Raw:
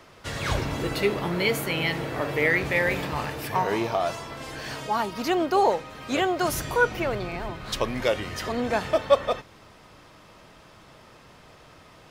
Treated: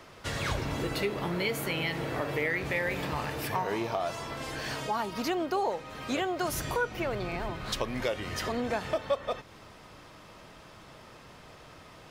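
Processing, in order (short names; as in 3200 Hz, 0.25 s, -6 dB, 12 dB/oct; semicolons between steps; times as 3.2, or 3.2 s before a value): compressor 2.5:1, threshold -30 dBFS, peak gain reduction 12 dB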